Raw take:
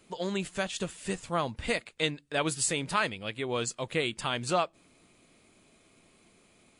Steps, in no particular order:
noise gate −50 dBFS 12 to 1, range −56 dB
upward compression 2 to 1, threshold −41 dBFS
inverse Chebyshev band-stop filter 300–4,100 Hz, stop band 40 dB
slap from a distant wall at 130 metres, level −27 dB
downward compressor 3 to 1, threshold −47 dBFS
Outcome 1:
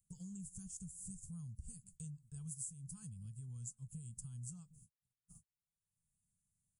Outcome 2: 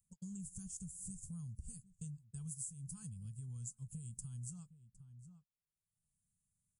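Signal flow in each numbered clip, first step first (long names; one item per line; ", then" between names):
slap from a distant wall, then noise gate, then inverse Chebyshev band-stop filter, then upward compression, then downward compressor
inverse Chebyshev band-stop filter, then noise gate, then slap from a distant wall, then downward compressor, then upward compression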